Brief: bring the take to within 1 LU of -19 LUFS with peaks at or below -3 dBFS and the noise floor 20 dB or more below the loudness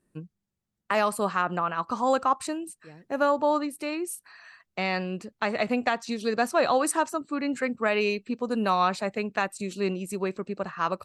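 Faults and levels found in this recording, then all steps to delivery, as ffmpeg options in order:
loudness -27.5 LUFS; peak -12.0 dBFS; loudness target -19.0 LUFS
-> -af "volume=8.5dB"

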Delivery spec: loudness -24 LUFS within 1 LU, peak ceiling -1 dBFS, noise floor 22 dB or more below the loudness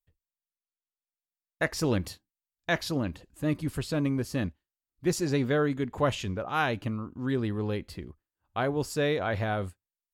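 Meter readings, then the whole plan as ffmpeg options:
loudness -30.0 LUFS; peak -13.5 dBFS; loudness target -24.0 LUFS
-> -af "volume=6dB"

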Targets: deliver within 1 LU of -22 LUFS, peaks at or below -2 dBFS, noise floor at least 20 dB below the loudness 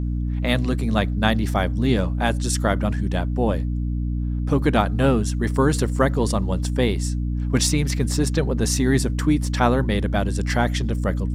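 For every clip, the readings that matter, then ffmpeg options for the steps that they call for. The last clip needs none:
hum 60 Hz; harmonics up to 300 Hz; hum level -21 dBFS; loudness -22.0 LUFS; peak -2.0 dBFS; loudness target -22.0 LUFS
-> -af "bandreject=f=60:t=h:w=6,bandreject=f=120:t=h:w=6,bandreject=f=180:t=h:w=6,bandreject=f=240:t=h:w=6,bandreject=f=300:t=h:w=6"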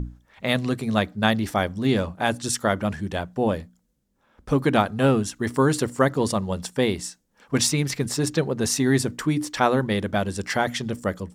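hum none; loudness -24.0 LUFS; peak -3.0 dBFS; loudness target -22.0 LUFS
-> -af "volume=2dB,alimiter=limit=-2dB:level=0:latency=1"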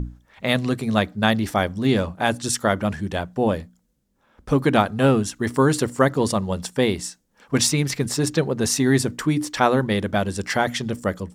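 loudness -22.0 LUFS; peak -2.0 dBFS; noise floor -66 dBFS

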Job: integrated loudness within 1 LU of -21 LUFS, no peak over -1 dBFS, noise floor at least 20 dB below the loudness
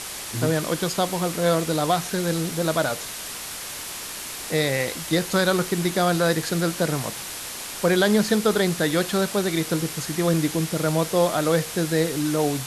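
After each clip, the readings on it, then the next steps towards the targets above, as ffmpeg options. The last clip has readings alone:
noise floor -34 dBFS; noise floor target -44 dBFS; loudness -23.5 LUFS; peak -8.0 dBFS; loudness target -21.0 LUFS
-> -af "afftdn=nr=10:nf=-34"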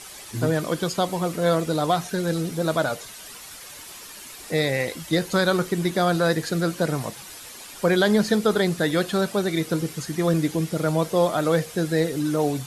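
noise floor -41 dBFS; noise floor target -44 dBFS
-> -af "afftdn=nr=6:nf=-41"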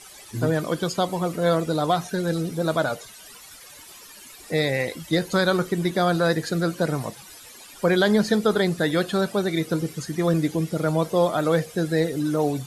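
noise floor -45 dBFS; loudness -23.5 LUFS; peak -8.5 dBFS; loudness target -21.0 LUFS
-> -af "volume=2.5dB"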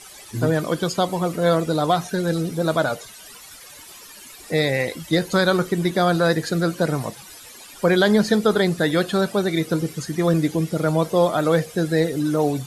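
loudness -21.0 LUFS; peak -6.0 dBFS; noise floor -43 dBFS

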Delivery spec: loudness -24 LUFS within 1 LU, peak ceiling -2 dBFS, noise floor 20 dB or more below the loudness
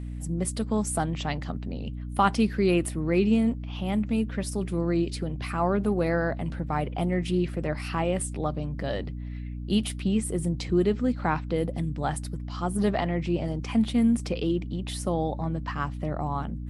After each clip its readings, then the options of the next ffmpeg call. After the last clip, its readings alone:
hum 60 Hz; harmonics up to 300 Hz; hum level -32 dBFS; loudness -28.0 LUFS; peak -9.5 dBFS; loudness target -24.0 LUFS
-> -af "bandreject=f=60:t=h:w=4,bandreject=f=120:t=h:w=4,bandreject=f=180:t=h:w=4,bandreject=f=240:t=h:w=4,bandreject=f=300:t=h:w=4"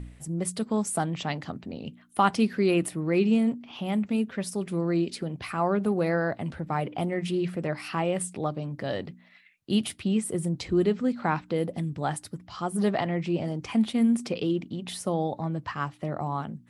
hum none; loudness -28.5 LUFS; peak -9.0 dBFS; loudness target -24.0 LUFS
-> -af "volume=4.5dB"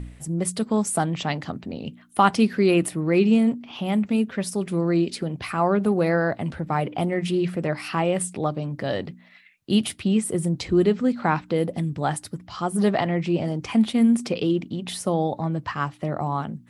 loudness -24.0 LUFS; peak -4.5 dBFS; noise floor -51 dBFS

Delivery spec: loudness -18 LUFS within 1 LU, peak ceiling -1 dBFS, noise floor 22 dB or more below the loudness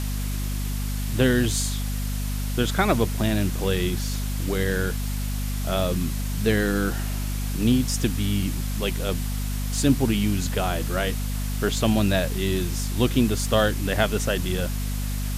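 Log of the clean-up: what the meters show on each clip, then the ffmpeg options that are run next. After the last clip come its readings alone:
hum 50 Hz; harmonics up to 250 Hz; hum level -25 dBFS; noise floor -27 dBFS; noise floor target -47 dBFS; loudness -25.0 LUFS; peak -6.0 dBFS; loudness target -18.0 LUFS
-> -af "bandreject=f=50:t=h:w=4,bandreject=f=100:t=h:w=4,bandreject=f=150:t=h:w=4,bandreject=f=200:t=h:w=4,bandreject=f=250:t=h:w=4"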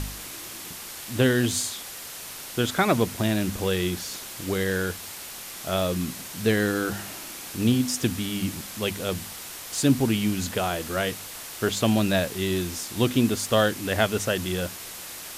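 hum none; noise floor -39 dBFS; noise floor target -49 dBFS
-> -af "afftdn=nr=10:nf=-39"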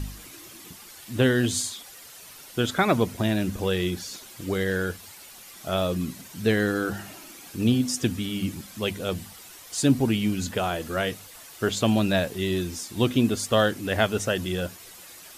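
noise floor -46 dBFS; noise floor target -48 dBFS
-> -af "afftdn=nr=6:nf=-46"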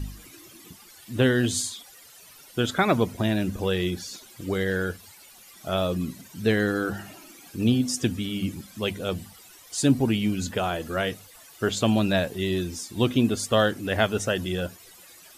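noise floor -50 dBFS; loudness -26.0 LUFS; peak -5.5 dBFS; loudness target -18.0 LUFS
-> -af "volume=8dB,alimiter=limit=-1dB:level=0:latency=1"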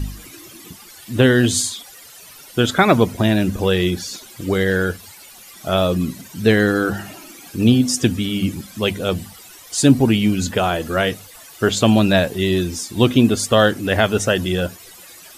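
loudness -18.0 LUFS; peak -1.0 dBFS; noise floor -42 dBFS

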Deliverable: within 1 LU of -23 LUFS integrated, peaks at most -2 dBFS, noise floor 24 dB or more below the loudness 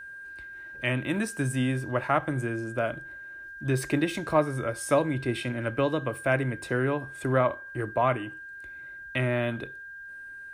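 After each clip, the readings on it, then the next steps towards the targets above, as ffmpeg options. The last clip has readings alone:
steady tone 1600 Hz; tone level -40 dBFS; loudness -28.5 LUFS; peak -10.5 dBFS; loudness target -23.0 LUFS
-> -af "bandreject=f=1.6k:w=30"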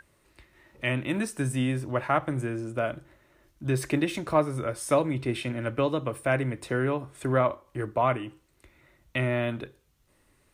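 steady tone none; loudness -28.5 LUFS; peak -11.0 dBFS; loudness target -23.0 LUFS
-> -af "volume=5.5dB"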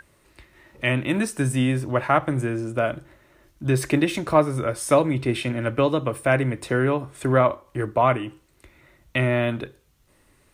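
loudness -23.0 LUFS; peak -5.5 dBFS; noise floor -61 dBFS

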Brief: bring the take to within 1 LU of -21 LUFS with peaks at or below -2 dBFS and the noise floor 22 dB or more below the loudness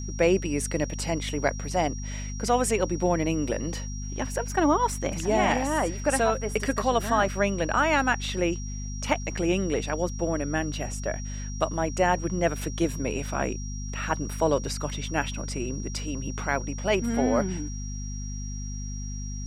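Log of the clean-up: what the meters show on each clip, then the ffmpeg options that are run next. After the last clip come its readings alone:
hum 50 Hz; harmonics up to 250 Hz; hum level -31 dBFS; steady tone 5700 Hz; tone level -41 dBFS; loudness -27.5 LUFS; peak -9.0 dBFS; loudness target -21.0 LUFS
-> -af "bandreject=f=50:t=h:w=6,bandreject=f=100:t=h:w=6,bandreject=f=150:t=h:w=6,bandreject=f=200:t=h:w=6,bandreject=f=250:t=h:w=6"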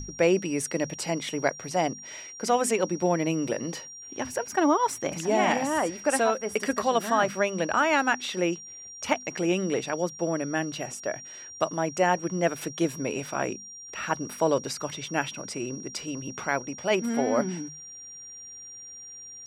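hum none; steady tone 5700 Hz; tone level -41 dBFS
-> -af "bandreject=f=5.7k:w=30"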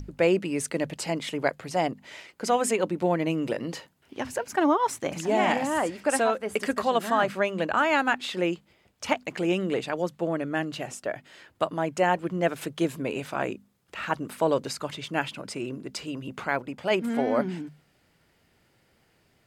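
steady tone none; loudness -27.5 LUFS; peak -9.5 dBFS; loudness target -21.0 LUFS
-> -af "volume=6.5dB"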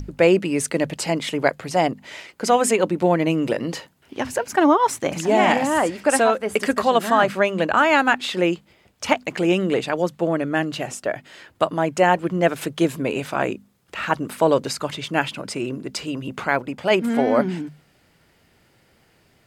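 loudness -21.0 LUFS; peak -3.0 dBFS; noise floor -60 dBFS

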